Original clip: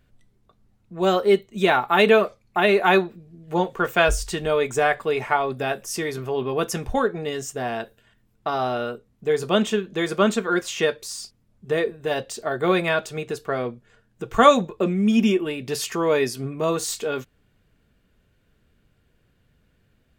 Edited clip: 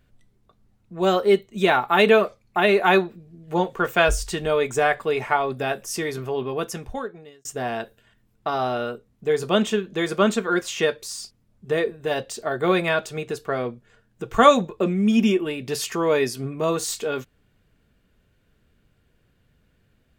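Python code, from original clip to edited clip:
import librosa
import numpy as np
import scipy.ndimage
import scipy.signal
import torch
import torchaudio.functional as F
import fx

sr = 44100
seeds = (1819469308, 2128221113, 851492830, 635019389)

y = fx.edit(x, sr, fx.fade_out_span(start_s=6.22, length_s=1.23), tone=tone)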